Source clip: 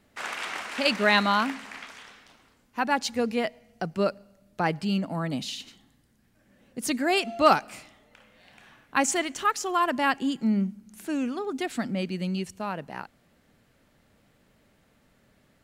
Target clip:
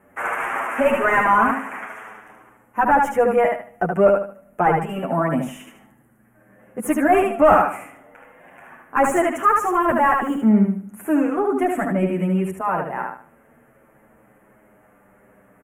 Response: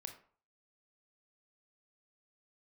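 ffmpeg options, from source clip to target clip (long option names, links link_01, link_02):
-filter_complex "[0:a]equalizer=frequency=12000:width=1.2:gain=13,asettb=1/sr,asplit=3[link_01][link_02][link_03];[link_01]atrim=end=9.334[link_04];[link_02]atrim=start=9.33:end=10.44,asetpts=PTS-STARTPTS,afade=type=in:duration=0.004:curve=qsin,afade=type=out:start_time=1.106:duration=0.004:curve=qsin,acrusher=bits=5:mode=log:mix=0:aa=0.000001[link_05];[link_03]atrim=start=10.436[link_06];[link_04][link_05]acrossfade=duration=0.004:curve1=hsin:curve2=qsin[link_07];[link_07][link_06]acrossfade=duration=0.004:curve1=qsin:curve2=hsin,asplit=2[link_08][link_09];[link_09]aecho=0:1:75|150|225|300:0.562|0.152|0.041|0.0111[link_10];[link_08][link_10]amix=inputs=2:normalize=0,asplit=2[link_11][link_12];[link_12]highpass=frequency=720:poles=1,volume=18dB,asoftclip=type=tanh:threshold=-6.5dB[link_13];[link_11][link_13]amix=inputs=2:normalize=0,lowpass=frequency=1000:poles=1,volume=-6dB,asuperstop=centerf=4300:order=4:qfactor=0.66,asplit=2[link_14][link_15];[link_15]adelay=8.1,afreqshift=-0.25[link_16];[link_14][link_16]amix=inputs=2:normalize=1,volume=7dB"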